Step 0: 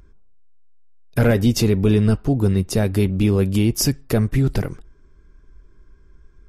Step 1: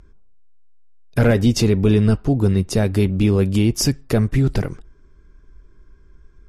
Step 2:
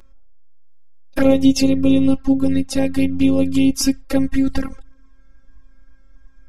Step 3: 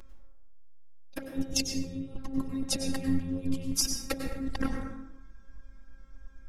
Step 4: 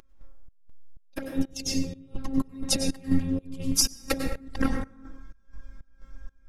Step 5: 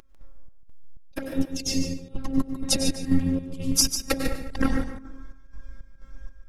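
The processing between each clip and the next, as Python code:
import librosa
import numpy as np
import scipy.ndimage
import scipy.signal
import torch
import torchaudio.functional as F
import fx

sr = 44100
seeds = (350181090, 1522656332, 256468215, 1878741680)

y1 = scipy.signal.sosfilt(scipy.signal.butter(2, 9700.0, 'lowpass', fs=sr, output='sos'), x)
y1 = y1 * 10.0 ** (1.0 / 20.0)
y2 = fx.robotise(y1, sr, hz=269.0)
y2 = fx.env_flanger(y2, sr, rest_ms=5.7, full_db=-14.5)
y2 = y2 * 10.0 ** (5.5 / 20.0)
y3 = fx.over_compress(y2, sr, threshold_db=-21.0, ratio=-0.5)
y3 = fx.rev_plate(y3, sr, seeds[0], rt60_s=0.97, hf_ratio=0.5, predelay_ms=85, drr_db=4.5)
y3 = y3 * 10.0 ** (-8.5 / 20.0)
y4 = fx.volume_shaper(y3, sr, bpm=124, per_beat=1, depth_db=-20, release_ms=207.0, shape='slow start')
y4 = y4 * 10.0 ** (5.5 / 20.0)
y5 = y4 + 10.0 ** (-9.0 / 20.0) * np.pad(y4, (int(147 * sr / 1000.0), 0))[:len(y4)]
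y5 = y5 * 10.0 ** (2.0 / 20.0)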